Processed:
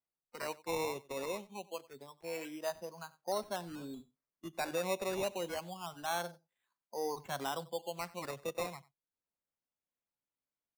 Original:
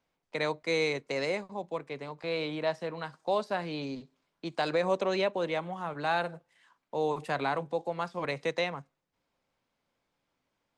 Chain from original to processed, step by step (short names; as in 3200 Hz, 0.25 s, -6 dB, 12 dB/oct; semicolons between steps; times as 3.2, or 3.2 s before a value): spectral noise reduction 14 dB; decimation with a swept rate 11×, swing 60% 0.26 Hz; on a send: echo 93 ms -21 dB; on the sum: gain -7 dB